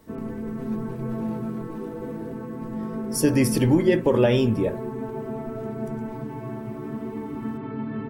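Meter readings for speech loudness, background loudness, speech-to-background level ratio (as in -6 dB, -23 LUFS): -21.5 LUFS, -32.0 LUFS, 10.5 dB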